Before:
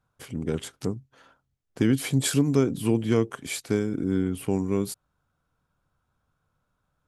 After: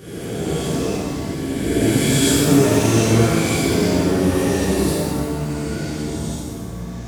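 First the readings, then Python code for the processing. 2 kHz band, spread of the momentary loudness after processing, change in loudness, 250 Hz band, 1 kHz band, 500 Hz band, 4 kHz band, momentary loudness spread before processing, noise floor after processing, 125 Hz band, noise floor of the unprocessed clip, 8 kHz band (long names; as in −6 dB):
+12.0 dB, 12 LU, +7.5 dB, +8.0 dB, +14.5 dB, +9.5 dB, +12.5 dB, 11 LU, −30 dBFS, +9.0 dB, −78 dBFS, +12.0 dB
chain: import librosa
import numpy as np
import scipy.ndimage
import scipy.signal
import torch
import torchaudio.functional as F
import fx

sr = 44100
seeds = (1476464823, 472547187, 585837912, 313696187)

y = fx.spec_swells(x, sr, rise_s=2.09)
y = fx.echo_pitch(y, sr, ms=128, semitones=-4, count=3, db_per_echo=-6.0)
y = fx.rev_shimmer(y, sr, seeds[0], rt60_s=1.6, semitones=7, shimmer_db=-8, drr_db=-10.0)
y = F.gain(torch.from_numpy(y), -7.5).numpy()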